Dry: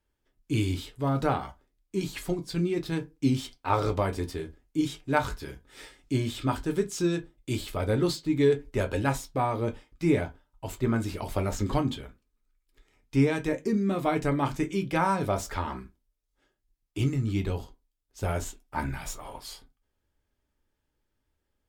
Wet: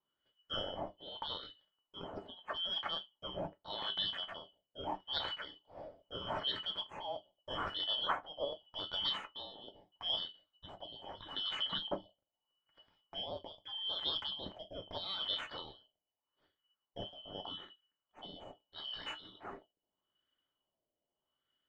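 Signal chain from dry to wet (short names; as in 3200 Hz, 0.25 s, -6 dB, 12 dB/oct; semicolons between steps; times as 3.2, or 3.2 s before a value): four-band scrambler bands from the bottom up 3412; LFO low-pass sine 0.8 Hz 630–1600 Hz; gain +1 dB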